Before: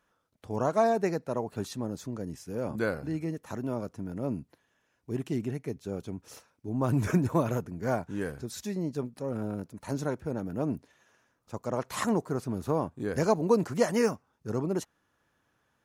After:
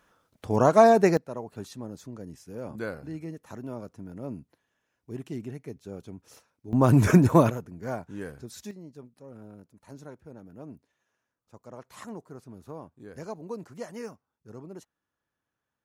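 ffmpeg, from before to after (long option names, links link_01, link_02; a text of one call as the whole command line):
ffmpeg -i in.wav -af "asetnsamples=nb_out_samples=441:pad=0,asendcmd='1.17 volume volume -4.5dB;6.73 volume volume 8dB;7.5 volume volume -4dB;8.71 volume volume -13dB',volume=8dB" out.wav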